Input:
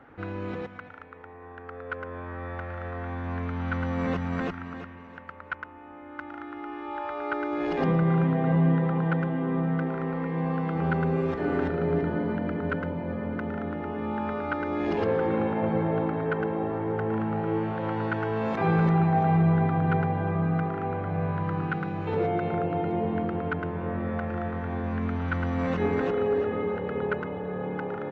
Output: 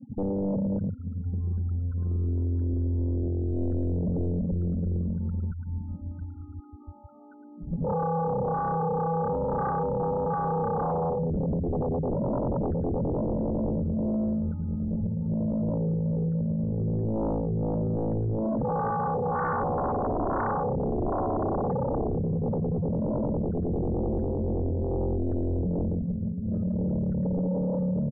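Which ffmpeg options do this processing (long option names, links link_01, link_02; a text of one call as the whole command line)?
ffmpeg -i in.wav -filter_complex "[0:a]acompressor=threshold=-35dB:ratio=8,asoftclip=type=hard:threshold=-32dB,alimiter=level_in=14dB:limit=-24dB:level=0:latency=1:release=27,volume=-14dB,asplit=2[link_01][link_02];[link_02]aecho=0:1:833|1666|2499|3332:0.0708|0.0404|0.023|0.0131[link_03];[link_01][link_03]amix=inputs=2:normalize=0,asubboost=boost=2:cutoff=210,lowpass=1200,afftfilt=real='re*gte(hypot(re,im),0.0112)':imag='im*gte(hypot(re,im),0.0112)':win_size=1024:overlap=0.75,firequalizer=gain_entry='entry(110,0);entry(210,9);entry(320,-28)':delay=0.05:min_phase=1,aphaser=in_gain=1:out_gain=1:delay=2.4:decay=0.38:speed=0.1:type=triangular,aeval=exprs='0.0631*sin(PI/2*6.31*val(0)/0.0631)':channel_layout=same" out.wav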